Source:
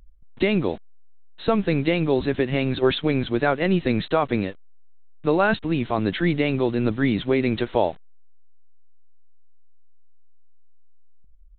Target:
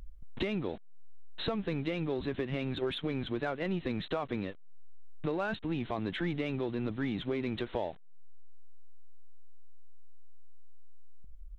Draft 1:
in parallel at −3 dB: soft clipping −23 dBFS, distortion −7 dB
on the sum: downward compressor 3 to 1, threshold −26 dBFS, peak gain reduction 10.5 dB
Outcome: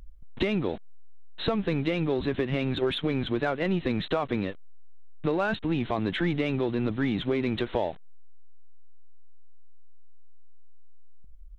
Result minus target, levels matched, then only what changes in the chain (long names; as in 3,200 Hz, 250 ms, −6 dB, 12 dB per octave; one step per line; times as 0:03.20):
downward compressor: peak gain reduction −6.5 dB
change: downward compressor 3 to 1, threshold −36 dBFS, peak gain reduction 17.5 dB